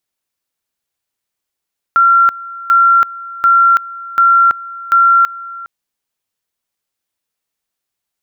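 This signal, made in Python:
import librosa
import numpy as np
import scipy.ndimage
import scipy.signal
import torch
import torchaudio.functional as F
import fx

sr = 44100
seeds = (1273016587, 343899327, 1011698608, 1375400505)

y = fx.two_level_tone(sr, hz=1370.0, level_db=-5.5, drop_db=19.5, high_s=0.33, low_s=0.41, rounds=5)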